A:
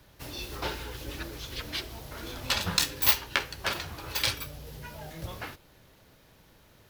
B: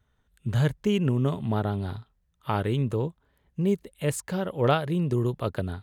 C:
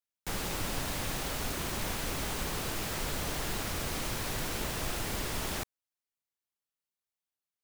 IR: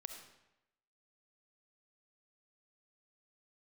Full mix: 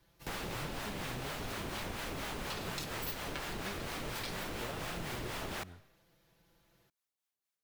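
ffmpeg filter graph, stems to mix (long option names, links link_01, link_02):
-filter_complex "[0:a]aecho=1:1:5.9:0.78,volume=-13.5dB[link_01];[1:a]volume=-18.5dB[link_02];[2:a]acrossover=split=4000[link_03][link_04];[link_04]acompressor=threshold=-46dB:ratio=4:attack=1:release=60[link_05];[link_03][link_05]amix=inputs=2:normalize=0,lowshelf=frequency=130:gain=-6,acrossover=split=580[link_06][link_07];[link_06]aeval=exprs='val(0)*(1-0.5/2+0.5/2*cos(2*PI*4.2*n/s))':channel_layout=same[link_08];[link_07]aeval=exprs='val(0)*(1-0.5/2-0.5/2*cos(2*PI*4.2*n/s))':channel_layout=same[link_09];[link_08][link_09]amix=inputs=2:normalize=0,volume=2.5dB,asplit=2[link_10][link_11];[link_11]volume=-12dB[link_12];[3:a]atrim=start_sample=2205[link_13];[link_12][link_13]afir=irnorm=-1:irlink=0[link_14];[link_01][link_02][link_10][link_14]amix=inputs=4:normalize=0,acompressor=threshold=-37dB:ratio=4"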